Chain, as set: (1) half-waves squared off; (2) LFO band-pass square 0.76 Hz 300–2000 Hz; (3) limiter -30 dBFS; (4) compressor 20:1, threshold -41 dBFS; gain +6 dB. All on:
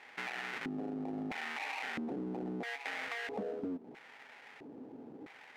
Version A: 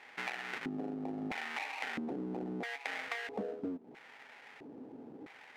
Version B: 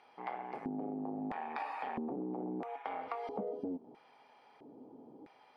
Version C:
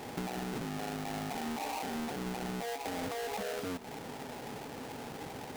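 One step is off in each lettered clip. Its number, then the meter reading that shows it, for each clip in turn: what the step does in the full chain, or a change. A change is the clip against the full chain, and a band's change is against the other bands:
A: 3, mean gain reduction 3.0 dB; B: 1, distortion -5 dB; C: 2, 8 kHz band +9.0 dB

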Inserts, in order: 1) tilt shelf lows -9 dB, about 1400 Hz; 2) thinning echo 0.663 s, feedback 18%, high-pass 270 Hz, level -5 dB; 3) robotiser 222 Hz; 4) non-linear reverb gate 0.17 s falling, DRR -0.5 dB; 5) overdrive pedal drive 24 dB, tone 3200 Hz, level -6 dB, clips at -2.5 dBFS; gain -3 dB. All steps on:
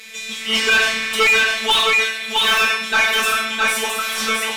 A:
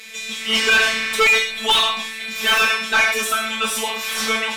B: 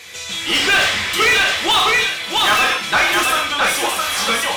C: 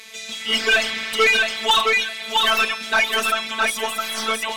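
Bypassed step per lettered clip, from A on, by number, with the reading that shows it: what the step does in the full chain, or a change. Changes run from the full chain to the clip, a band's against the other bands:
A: 2, momentary loudness spread change +2 LU; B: 3, 250 Hz band +2.0 dB; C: 4, crest factor change +3.0 dB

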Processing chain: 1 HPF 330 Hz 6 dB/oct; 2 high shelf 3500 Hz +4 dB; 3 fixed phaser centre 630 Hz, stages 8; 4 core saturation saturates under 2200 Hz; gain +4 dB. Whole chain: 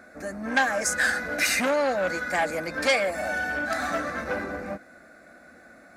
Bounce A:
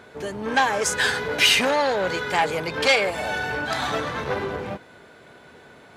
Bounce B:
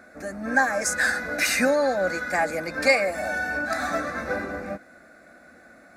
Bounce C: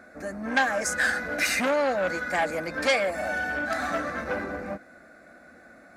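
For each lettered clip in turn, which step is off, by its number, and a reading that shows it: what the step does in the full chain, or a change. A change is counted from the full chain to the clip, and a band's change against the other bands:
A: 3, momentary loudness spread change +2 LU; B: 4, 4 kHz band -2.0 dB; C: 2, 8 kHz band -3.0 dB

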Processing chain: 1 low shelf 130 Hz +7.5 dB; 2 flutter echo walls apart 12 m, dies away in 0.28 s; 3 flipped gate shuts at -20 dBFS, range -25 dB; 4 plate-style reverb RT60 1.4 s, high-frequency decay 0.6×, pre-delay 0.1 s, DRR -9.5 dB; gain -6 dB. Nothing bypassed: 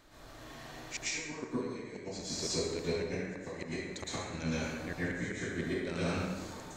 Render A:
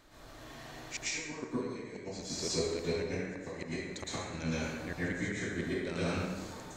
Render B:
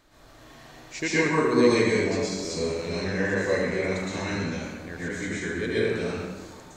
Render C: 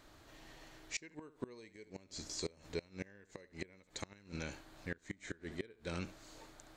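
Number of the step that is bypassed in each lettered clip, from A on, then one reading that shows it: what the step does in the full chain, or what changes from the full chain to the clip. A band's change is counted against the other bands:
2, crest factor change +1.5 dB; 3, momentary loudness spread change +5 LU; 4, momentary loudness spread change +5 LU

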